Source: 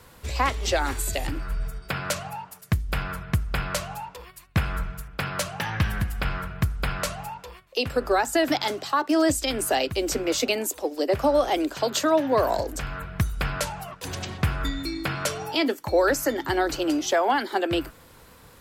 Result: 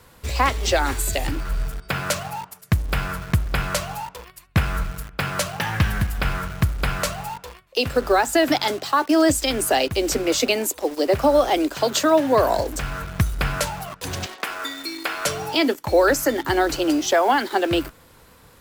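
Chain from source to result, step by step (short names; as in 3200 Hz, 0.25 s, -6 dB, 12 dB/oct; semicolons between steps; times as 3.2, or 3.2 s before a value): 14.26–15.26 Bessel high-pass 470 Hz, order 6; in parallel at -4.5 dB: bit-crush 6-bit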